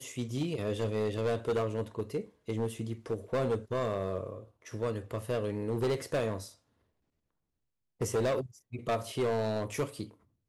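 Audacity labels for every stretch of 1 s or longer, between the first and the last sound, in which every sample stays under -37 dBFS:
6.450000	8.010000	silence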